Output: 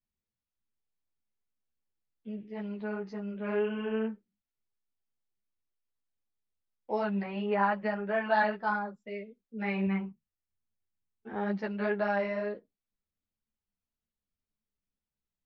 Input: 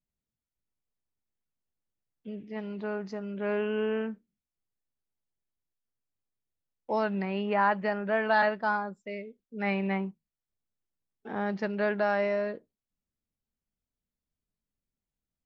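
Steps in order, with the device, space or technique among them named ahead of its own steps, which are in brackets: 9.86–11.34 fifteen-band EQ 100 Hz +9 dB, 630 Hz -6 dB, 4000 Hz -7 dB; string-machine ensemble chorus (ensemble effect; LPF 4900 Hz 12 dB/oct)

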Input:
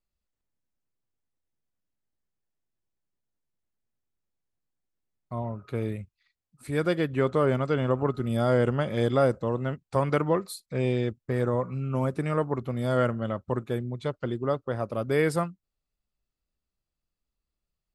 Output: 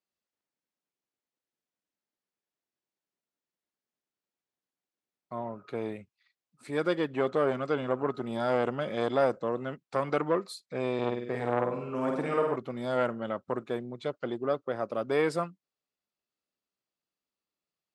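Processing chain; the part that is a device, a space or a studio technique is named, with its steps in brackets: 10.94–12.56 flutter echo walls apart 8.5 m, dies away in 0.76 s; public-address speaker with an overloaded transformer (core saturation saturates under 780 Hz; BPF 250–6600 Hz)

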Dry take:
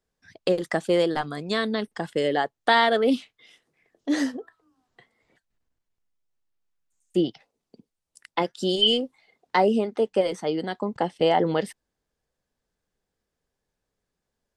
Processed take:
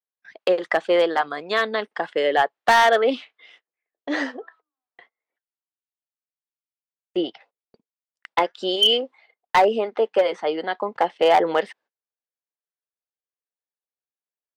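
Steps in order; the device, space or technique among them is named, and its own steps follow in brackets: walkie-talkie (BPF 570–2700 Hz; hard clip -18 dBFS, distortion -13 dB; gate -60 dBFS, range -26 dB); gain +8 dB

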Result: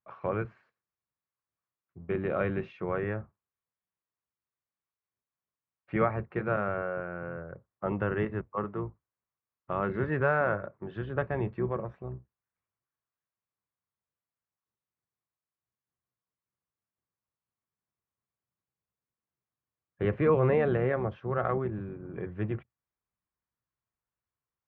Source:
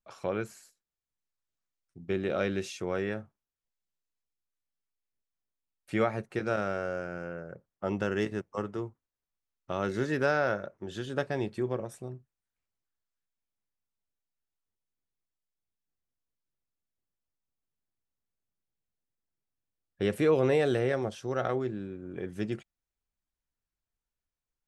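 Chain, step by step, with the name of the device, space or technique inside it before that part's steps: sub-octave bass pedal (octaver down 1 oct, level -4 dB; speaker cabinet 79–2300 Hz, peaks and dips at 120 Hz +4 dB, 270 Hz -4 dB, 1100 Hz +7 dB)

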